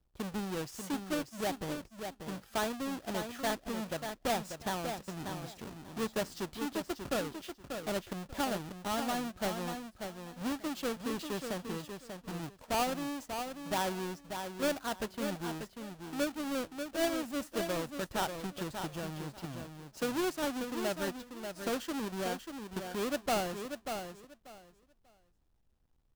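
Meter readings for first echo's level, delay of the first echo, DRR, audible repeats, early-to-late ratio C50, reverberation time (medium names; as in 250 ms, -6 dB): -7.0 dB, 589 ms, no reverb, 2, no reverb, no reverb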